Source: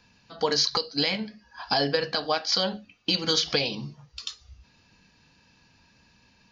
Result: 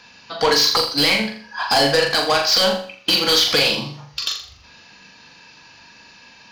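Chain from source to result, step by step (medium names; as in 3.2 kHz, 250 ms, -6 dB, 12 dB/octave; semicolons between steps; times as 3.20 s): overdrive pedal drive 19 dB, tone 6 kHz, clips at -11 dBFS; flutter echo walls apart 7.1 m, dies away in 0.46 s; trim +2.5 dB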